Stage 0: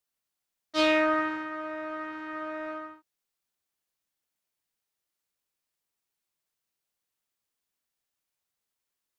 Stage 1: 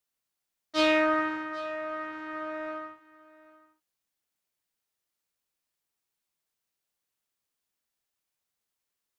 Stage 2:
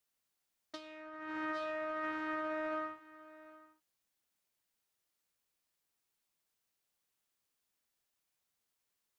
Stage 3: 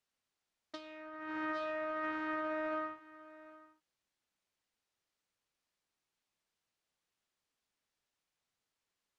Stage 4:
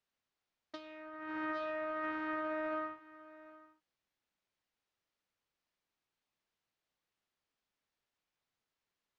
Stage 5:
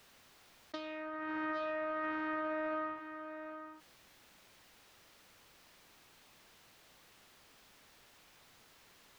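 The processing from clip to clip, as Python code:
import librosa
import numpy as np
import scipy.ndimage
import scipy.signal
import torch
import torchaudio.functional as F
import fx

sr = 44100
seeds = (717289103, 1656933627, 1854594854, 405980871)

y1 = x + 10.0 ** (-20.0 / 20.0) * np.pad(x, (int(786 * sr / 1000.0), 0))[:len(x)]
y2 = fx.over_compress(y1, sr, threshold_db=-37.0, ratio=-1.0)
y2 = F.gain(torch.from_numpy(y2), -5.0).numpy()
y3 = fx.air_absorb(y2, sr, metres=63.0)
y3 = F.gain(torch.from_numpy(y3), 1.0).numpy()
y4 = fx.air_absorb(y3, sr, metres=85.0)
y5 = fx.env_flatten(y4, sr, amount_pct=50)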